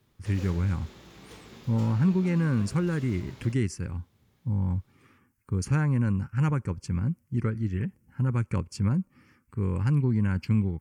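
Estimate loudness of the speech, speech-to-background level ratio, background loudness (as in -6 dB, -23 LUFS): -28.0 LUFS, 19.5 dB, -47.5 LUFS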